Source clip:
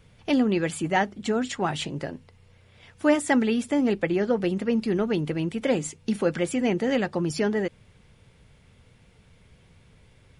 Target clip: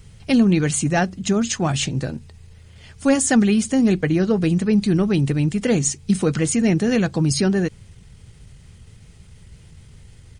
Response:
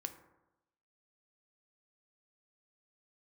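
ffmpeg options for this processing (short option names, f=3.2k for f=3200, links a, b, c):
-af "acontrast=45,bass=f=250:g=10,treble=f=4k:g=12,asetrate=40440,aresample=44100,atempo=1.09051,volume=-3.5dB"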